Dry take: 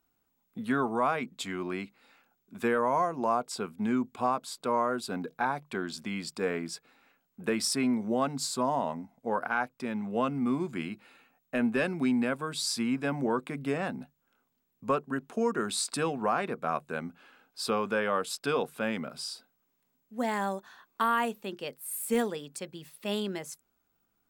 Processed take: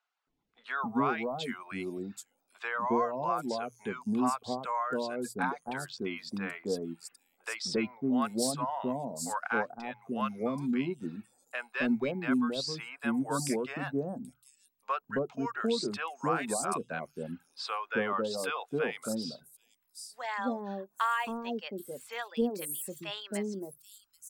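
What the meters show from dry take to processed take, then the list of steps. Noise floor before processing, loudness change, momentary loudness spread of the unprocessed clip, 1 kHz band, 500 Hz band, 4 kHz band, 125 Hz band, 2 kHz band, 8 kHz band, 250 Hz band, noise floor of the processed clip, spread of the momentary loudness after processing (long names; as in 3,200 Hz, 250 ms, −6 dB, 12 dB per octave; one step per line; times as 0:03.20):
−77 dBFS, −2.5 dB, 11 LU, −2.5 dB, −3.0 dB, −2.5 dB, −2.0 dB, −1.0 dB, −2.5 dB, −1.5 dB, −76 dBFS, 11 LU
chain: reverb reduction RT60 0.78 s
mains-hum notches 60/120 Hz
three-band delay without the direct sound mids, lows, highs 270/780 ms, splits 690/5,900 Hz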